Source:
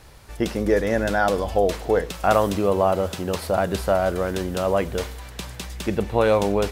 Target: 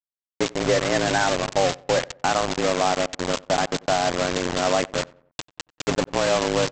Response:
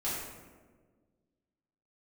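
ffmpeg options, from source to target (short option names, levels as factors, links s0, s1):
-filter_complex "[0:a]lowpass=f=5300:w=0.5412,lowpass=f=5300:w=1.3066,highshelf=f=2800:g=3.5,alimiter=limit=0.299:level=0:latency=1:release=404,afreqshift=74,aresample=16000,acrusher=bits=3:mix=0:aa=0.000001,aresample=44100,asplit=2[s0][s1];[s1]adelay=92,lowpass=f=1600:p=1,volume=0.075,asplit=2[s2][s3];[s3]adelay=92,lowpass=f=1600:p=1,volume=0.43,asplit=2[s4][s5];[s5]adelay=92,lowpass=f=1600:p=1,volume=0.43[s6];[s0][s2][s4][s6]amix=inputs=4:normalize=0"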